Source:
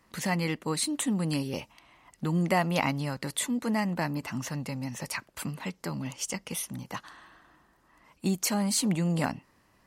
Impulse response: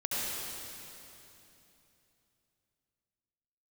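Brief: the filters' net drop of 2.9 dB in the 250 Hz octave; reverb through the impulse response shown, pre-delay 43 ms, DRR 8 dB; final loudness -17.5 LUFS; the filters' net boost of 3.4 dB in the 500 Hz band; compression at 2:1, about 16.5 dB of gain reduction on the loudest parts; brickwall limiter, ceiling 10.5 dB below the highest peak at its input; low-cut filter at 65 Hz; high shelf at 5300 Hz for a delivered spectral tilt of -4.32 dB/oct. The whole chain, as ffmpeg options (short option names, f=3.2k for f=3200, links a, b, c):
-filter_complex "[0:a]highpass=65,equalizer=f=250:t=o:g=-5.5,equalizer=f=500:t=o:g=5.5,highshelf=f=5.3k:g=3.5,acompressor=threshold=-50dB:ratio=2,alimiter=level_in=12dB:limit=-24dB:level=0:latency=1,volume=-12dB,asplit=2[a][b];[1:a]atrim=start_sample=2205,adelay=43[c];[b][c]afir=irnorm=-1:irlink=0,volume=-15.5dB[d];[a][d]amix=inputs=2:normalize=0,volume=29dB"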